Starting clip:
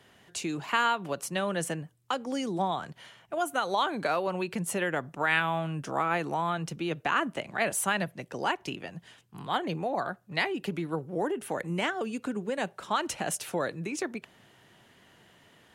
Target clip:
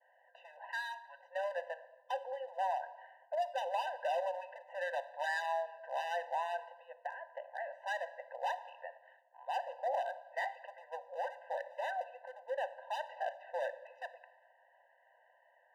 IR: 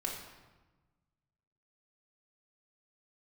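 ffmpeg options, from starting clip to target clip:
-filter_complex "[0:a]asplit=3[s0][s1][s2];[s0]afade=t=out:st=0.71:d=0.02[s3];[s1]highpass=f=1200:w=0.5412,highpass=f=1200:w=1.3066,afade=t=in:st=0.71:d=0.02,afade=t=out:st=1.18:d=0.02[s4];[s2]afade=t=in:st=1.18:d=0.02[s5];[s3][s4][s5]amix=inputs=3:normalize=0,agate=range=0.0224:threshold=0.00141:ratio=3:detection=peak,lowpass=f=1700:w=0.5412,lowpass=f=1700:w=1.3066,asplit=3[s6][s7][s8];[s6]afade=t=out:st=6.7:d=0.02[s9];[s7]acompressor=threshold=0.02:ratio=16,afade=t=in:st=6.7:d=0.02,afade=t=out:st=7.69:d=0.02[s10];[s8]afade=t=in:st=7.69:d=0.02[s11];[s9][s10][s11]amix=inputs=3:normalize=0,asoftclip=type=hard:threshold=0.0447,asplit=2[s12][s13];[1:a]atrim=start_sample=2205[s14];[s13][s14]afir=irnorm=-1:irlink=0,volume=0.355[s15];[s12][s15]amix=inputs=2:normalize=0,afftfilt=real='re*eq(mod(floor(b*sr/1024/510),2),1)':imag='im*eq(mod(floor(b*sr/1024/510),2),1)':win_size=1024:overlap=0.75,volume=0.631"

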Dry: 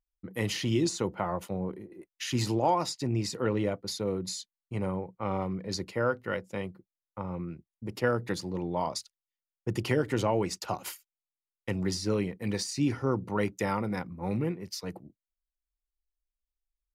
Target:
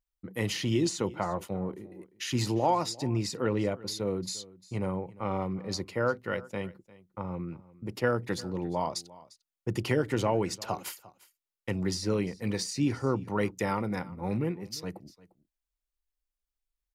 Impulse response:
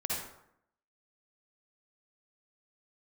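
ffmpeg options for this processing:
-af "aecho=1:1:350:0.0944"

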